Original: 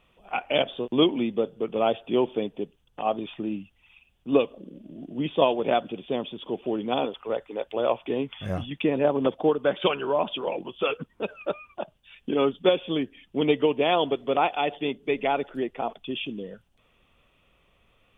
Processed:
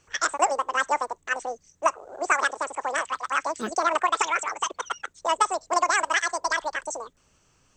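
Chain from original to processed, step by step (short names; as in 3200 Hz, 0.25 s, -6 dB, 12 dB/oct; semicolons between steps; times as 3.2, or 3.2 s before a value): speed mistake 33 rpm record played at 78 rpm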